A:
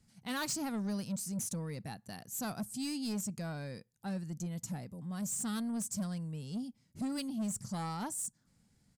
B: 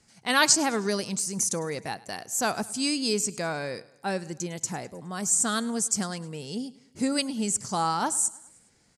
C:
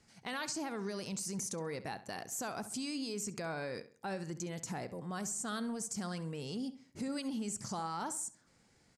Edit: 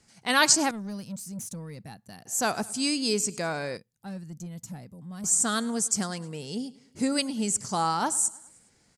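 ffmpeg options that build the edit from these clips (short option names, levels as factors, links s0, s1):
-filter_complex "[0:a]asplit=2[s0][s1];[1:a]asplit=3[s2][s3][s4];[s2]atrim=end=0.712[s5];[s0]atrim=start=0.708:end=2.262[s6];[s3]atrim=start=2.258:end=3.772[s7];[s1]atrim=start=3.768:end=5.242[s8];[s4]atrim=start=5.238[s9];[s5][s6]acrossfade=d=0.004:c1=hsin:c2=hsin[s10];[s10][s7]acrossfade=d=0.004:c1=hsin:c2=hsin[s11];[s11][s8]acrossfade=d=0.004:c1=hsin:c2=hsin[s12];[s12][s9]acrossfade=d=0.004:c1=hsin:c2=hsin"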